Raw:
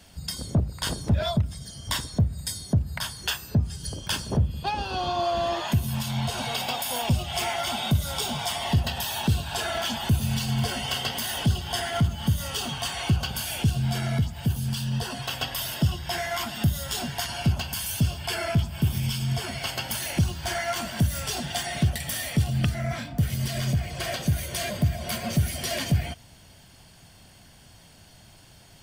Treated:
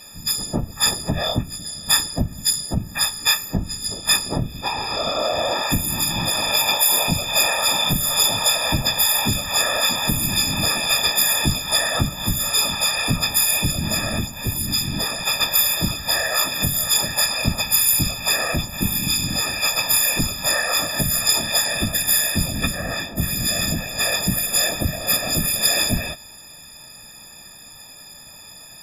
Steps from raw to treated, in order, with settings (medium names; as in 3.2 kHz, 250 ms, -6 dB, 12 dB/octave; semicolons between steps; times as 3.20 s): partials quantised in pitch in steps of 6 st; whisper effect; trim +1 dB